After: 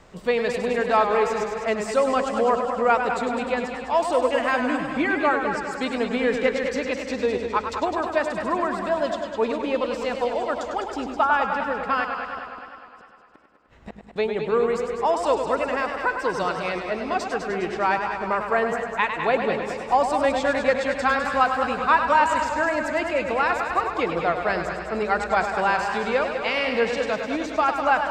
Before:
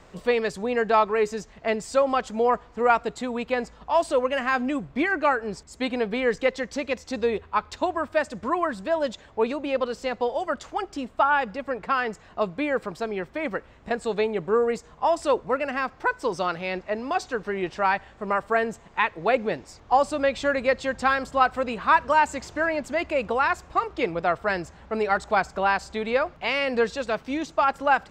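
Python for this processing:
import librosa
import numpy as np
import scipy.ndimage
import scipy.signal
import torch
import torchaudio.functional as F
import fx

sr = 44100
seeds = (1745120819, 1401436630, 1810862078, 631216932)

y = fx.gate_flip(x, sr, shuts_db=-25.0, range_db=-41, at=(12.04, 14.16))
y = fx.echo_split(y, sr, split_hz=400.0, low_ms=83, high_ms=207, feedback_pct=52, wet_db=-10.0)
y = fx.echo_warbled(y, sr, ms=101, feedback_pct=74, rate_hz=2.8, cents=92, wet_db=-8.0)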